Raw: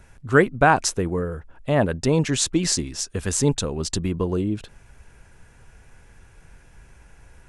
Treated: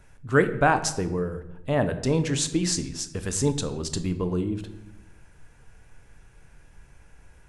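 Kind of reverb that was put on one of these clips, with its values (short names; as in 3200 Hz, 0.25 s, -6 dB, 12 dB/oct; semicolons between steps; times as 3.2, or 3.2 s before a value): shoebox room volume 330 m³, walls mixed, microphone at 0.42 m; gain -4.5 dB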